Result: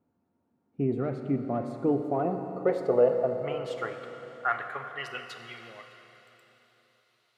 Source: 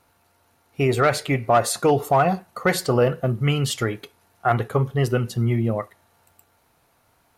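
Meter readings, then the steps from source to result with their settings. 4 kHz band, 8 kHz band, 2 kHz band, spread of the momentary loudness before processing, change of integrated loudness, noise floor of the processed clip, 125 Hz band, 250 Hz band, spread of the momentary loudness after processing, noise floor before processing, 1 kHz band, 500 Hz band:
-15.0 dB, under -25 dB, -9.5 dB, 8 LU, -7.5 dB, -75 dBFS, -15.5 dB, -6.0 dB, 18 LU, -64 dBFS, -11.5 dB, -5.5 dB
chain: band-pass sweep 230 Hz -> 3.7 kHz, 1.71–5.68 s; Schroeder reverb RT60 3.8 s, combs from 29 ms, DRR 6 dB

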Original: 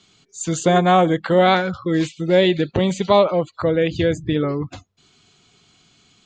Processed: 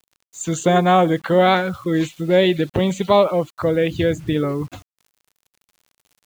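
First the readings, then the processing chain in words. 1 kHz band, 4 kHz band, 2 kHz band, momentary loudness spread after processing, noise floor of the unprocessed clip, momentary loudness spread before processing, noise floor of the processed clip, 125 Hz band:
0.0 dB, -1.0 dB, 0.0 dB, 8 LU, -59 dBFS, 8 LU, under -85 dBFS, 0.0 dB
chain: peaking EQ 4.9 kHz -8.5 dB 0.32 oct; bit crusher 8-bit

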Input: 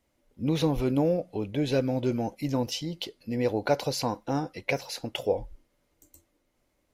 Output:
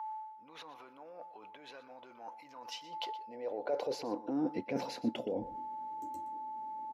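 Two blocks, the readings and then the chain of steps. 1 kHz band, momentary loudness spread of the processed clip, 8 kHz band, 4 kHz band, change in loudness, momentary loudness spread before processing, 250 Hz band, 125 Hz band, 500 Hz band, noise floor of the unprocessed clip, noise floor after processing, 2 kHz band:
-3.0 dB, 16 LU, -15.0 dB, -11.0 dB, -10.5 dB, 7 LU, -10.5 dB, -23.0 dB, -11.0 dB, -74 dBFS, -56 dBFS, -13.5 dB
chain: low-pass 1.4 kHz 6 dB/octave; whistle 870 Hz -48 dBFS; dynamic bell 250 Hz, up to +4 dB, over -39 dBFS, Q 1.4; peak limiter -24 dBFS, peak gain reduction 13 dB; reverse; compression 10:1, threshold -44 dBFS, peak gain reduction 16.5 dB; reverse; high-pass sweep 1.1 kHz -> 240 Hz, 2.72–4.63 s; bass shelf 95 Hz +10.5 dB; delay 121 ms -16 dB; trim +8 dB

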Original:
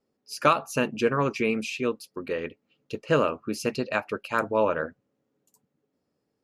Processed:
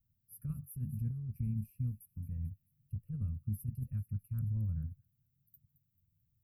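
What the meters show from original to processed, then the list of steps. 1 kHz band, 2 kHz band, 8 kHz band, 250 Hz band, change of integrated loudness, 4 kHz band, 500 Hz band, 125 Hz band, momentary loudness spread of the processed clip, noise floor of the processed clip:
under -40 dB, under -40 dB, under -15 dB, -14.0 dB, -13.0 dB, under -40 dB, under -40 dB, +2.5 dB, 9 LU, -80 dBFS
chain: inverse Chebyshev band-stop 360–7200 Hz, stop band 60 dB; feedback echo behind a high-pass 220 ms, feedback 51%, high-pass 4 kHz, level -13 dB; compressor with a negative ratio -48 dBFS, ratio -1; trim +13.5 dB

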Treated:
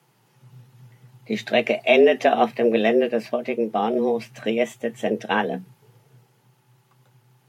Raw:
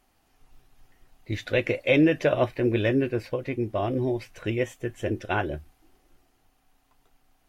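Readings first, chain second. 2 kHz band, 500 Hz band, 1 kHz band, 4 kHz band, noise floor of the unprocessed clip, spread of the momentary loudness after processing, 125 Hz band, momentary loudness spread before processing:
+4.5 dB, +6.5 dB, +10.0 dB, +7.0 dB, -67 dBFS, 11 LU, -9.5 dB, 11 LU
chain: frequency shift +110 Hz; trim +4.5 dB

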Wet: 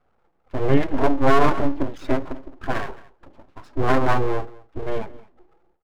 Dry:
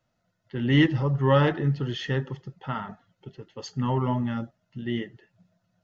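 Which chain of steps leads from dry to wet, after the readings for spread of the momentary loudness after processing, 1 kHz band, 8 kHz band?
16 LU, +8.0 dB, no reading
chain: resonant low-pass 1 kHz, resonance Q 2.3; static phaser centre 320 Hz, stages 6; full-wave rectifier; delay 217 ms -21 dB; loudness maximiser +15 dB; endings held to a fixed fall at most 150 dB/s; trim -3 dB

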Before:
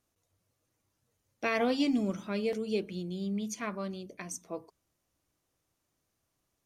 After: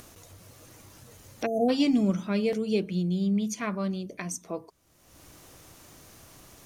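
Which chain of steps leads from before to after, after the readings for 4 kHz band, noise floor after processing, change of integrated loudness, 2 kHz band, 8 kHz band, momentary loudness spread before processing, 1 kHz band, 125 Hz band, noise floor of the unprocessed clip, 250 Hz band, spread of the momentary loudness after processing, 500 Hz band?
+3.5 dB, -60 dBFS, +5.0 dB, -1.0 dB, +4.5 dB, 13 LU, +2.5 dB, +9.5 dB, -81 dBFS, +6.5 dB, 12 LU, +4.0 dB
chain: spectral selection erased 1.46–1.69 s, 840–6100 Hz; dynamic bell 170 Hz, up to +8 dB, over -50 dBFS, Q 3; upward compressor, threshold -35 dBFS; trim +4 dB

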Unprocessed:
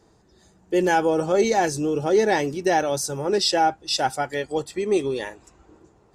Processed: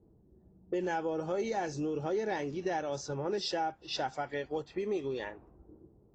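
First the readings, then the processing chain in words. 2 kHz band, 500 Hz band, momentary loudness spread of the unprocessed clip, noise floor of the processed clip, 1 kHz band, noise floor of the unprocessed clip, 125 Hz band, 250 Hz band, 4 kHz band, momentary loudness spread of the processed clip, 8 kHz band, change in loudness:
-13.0 dB, -12.0 dB, 8 LU, -63 dBFS, -13.0 dB, -58 dBFS, -9.5 dB, -11.5 dB, -13.5 dB, 5 LU, -18.0 dB, -12.5 dB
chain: treble shelf 5 kHz -9 dB; level-controlled noise filter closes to 340 Hz, open at -20.5 dBFS; compression 3:1, threshold -32 dBFS, peak gain reduction 13 dB; trim -2 dB; AAC 32 kbps 16 kHz

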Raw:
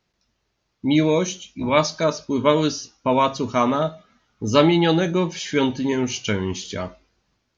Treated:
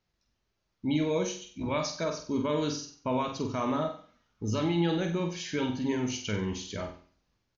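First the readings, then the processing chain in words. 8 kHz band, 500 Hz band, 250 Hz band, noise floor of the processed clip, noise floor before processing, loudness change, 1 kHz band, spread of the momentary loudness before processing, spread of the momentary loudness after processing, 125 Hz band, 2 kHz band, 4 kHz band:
no reading, -11.0 dB, -9.0 dB, -79 dBFS, -74 dBFS, -10.0 dB, -12.0 dB, 11 LU, 9 LU, -8.0 dB, -11.0 dB, -10.5 dB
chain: bass shelf 76 Hz +8.5 dB; peak limiter -11.5 dBFS, peak gain reduction 9.5 dB; on a send: flutter echo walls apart 8.1 m, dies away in 0.44 s; on the sum: resampled via 16 kHz; trim -9 dB

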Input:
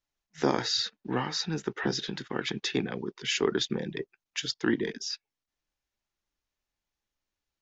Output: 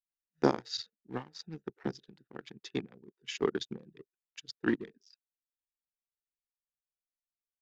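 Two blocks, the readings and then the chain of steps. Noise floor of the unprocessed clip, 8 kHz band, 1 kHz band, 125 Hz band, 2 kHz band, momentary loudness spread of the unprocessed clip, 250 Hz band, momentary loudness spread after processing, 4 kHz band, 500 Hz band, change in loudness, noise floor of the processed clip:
under -85 dBFS, no reading, -5.0 dB, -7.5 dB, -8.5 dB, 8 LU, -4.5 dB, 19 LU, -12.0 dB, -4.0 dB, -5.5 dB, under -85 dBFS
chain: local Wiener filter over 41 samples; upward expansion 2.5:1, over -38 dBFS; trim +2 dB

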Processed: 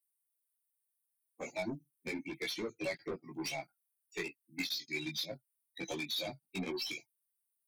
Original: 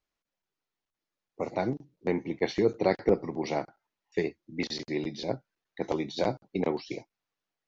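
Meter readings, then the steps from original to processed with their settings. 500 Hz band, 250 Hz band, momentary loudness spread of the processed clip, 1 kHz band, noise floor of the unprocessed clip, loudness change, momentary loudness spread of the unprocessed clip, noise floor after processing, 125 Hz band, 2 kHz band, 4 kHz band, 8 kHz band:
-13.5 dB, -11.0 dB, 9 LU, -13.0 dB, under -85 dBFS, -8.5 dB, 11 LU, -85 dBFS, -12.0 dB, -1.0 dB, +2.0 dB, no reading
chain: expander on every frequency bin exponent 2; high-pass 130 Hz 24 dB/octave; resonant high shelf 1.9 kHz +13.5 dB, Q 3; compression 6:1, threshold -36 dBFS, peak gain reduction 18 dB; saturation -39 dBFS, distortion -8 dB; chorus voices 4, 0.3 Hz, delay 17 ms, depth 4.7 ms; Butterworth band-stop 2.9 kHz, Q 7; trim +9 dB

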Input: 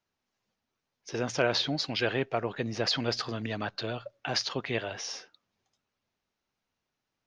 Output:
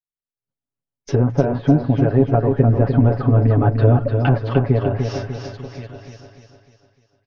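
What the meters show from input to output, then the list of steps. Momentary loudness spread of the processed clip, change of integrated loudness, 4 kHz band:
15 LU, +14.0 dB, under -10 dB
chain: compression 6:1, threshold -28 dBFS, peak gain reduction 8 dB; tilt EQ -3.5 dB/octave; expander -56 dBFS; delay 1078 ms -23.5 dB; low-pass that closes with the level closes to 1 kHz, closed at -28.5 dBFS; comb 7.2 ms, depth 83%; level rider gain up to 14.5 dB; feedback delay 299 ms, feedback 46%, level -6 dB

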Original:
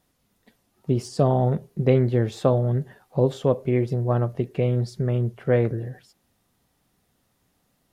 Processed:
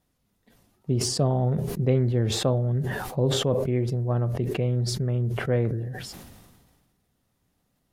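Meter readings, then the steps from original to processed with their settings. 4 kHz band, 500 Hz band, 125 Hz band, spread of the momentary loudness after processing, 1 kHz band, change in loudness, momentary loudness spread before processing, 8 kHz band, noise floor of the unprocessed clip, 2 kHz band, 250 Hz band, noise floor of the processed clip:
+11.5 dB, -4.0 dB, -1.0 dB, 7 LU, -4.5 dB, -2.0 dB, 7 LU, no reading, -70 dBFS, +1.5 dB, -2.5 dB, -73 dBFS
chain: bass shelf 220 Hz +6 dB; decay stretcher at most 36 dB/s; trim -6.5 dB

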